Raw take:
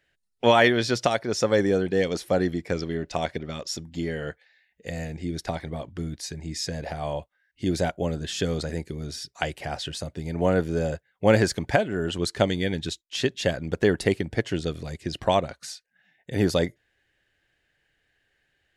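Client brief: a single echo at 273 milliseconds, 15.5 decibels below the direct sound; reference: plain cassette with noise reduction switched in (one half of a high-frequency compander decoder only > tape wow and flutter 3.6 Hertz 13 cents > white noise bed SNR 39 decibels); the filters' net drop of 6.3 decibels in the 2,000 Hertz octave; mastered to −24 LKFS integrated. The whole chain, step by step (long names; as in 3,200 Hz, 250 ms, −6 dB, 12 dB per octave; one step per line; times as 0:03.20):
parametric band 2,000 Hz −8 dB
single-tap delay 273 ms −15.5 dB
one half of a high-frequency compander decoder only
tape wow and flutter 3.6 Hz 13 cents
white noise bed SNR 39 dB
level +3 dB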